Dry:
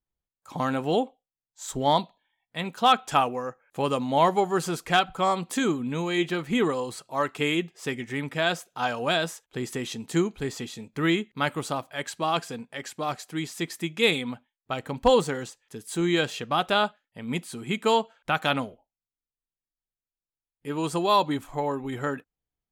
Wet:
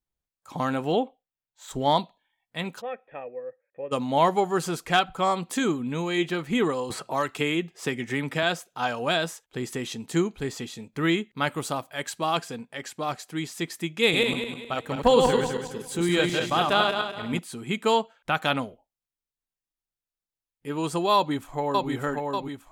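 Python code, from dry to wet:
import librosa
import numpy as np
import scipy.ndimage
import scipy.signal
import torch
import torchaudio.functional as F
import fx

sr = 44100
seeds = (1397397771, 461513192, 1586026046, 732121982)

y = fx.band_shelf(x, sr, hz=7800.0, db=-9.5, octaves=1.7, at=(0.92, 1.71))
y = fx.formant_cascade(y, sr, vowel='e', at=(2.8, 3.91), fade=0.02)
y = fx.band_squash(y, sr, depth_pct=70, at=(6.9, 8.43))
y = fx.high_shelf(y, sr, hz=8800.0, db=6.5, at=(11.55, 12.38))
y = fx.reverse_delay_fb(y, sr, ms=103, feedback_pct=58, wet_db=-2.5, at=(14.03, 17.39))
y = fx.echo_throw(y, sr, start_s=21.15, length_s=0.74, ms=590, feedback_pct=55, wet_db=-3.0)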